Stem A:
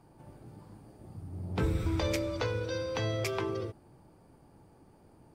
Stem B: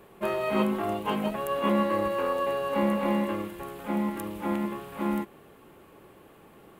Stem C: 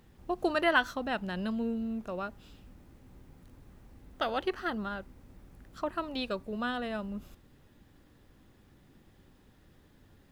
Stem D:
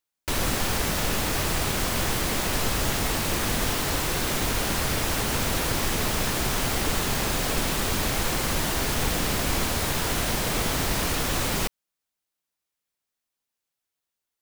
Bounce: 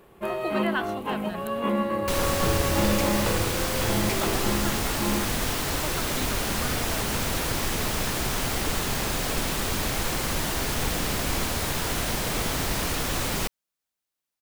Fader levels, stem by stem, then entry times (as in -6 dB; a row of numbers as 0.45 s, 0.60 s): +1.5 dB, -1.0 dB, -3.5 dB, -1.5 dB; 0.85 s, 0.00 s, 0.00 s, 1.80 s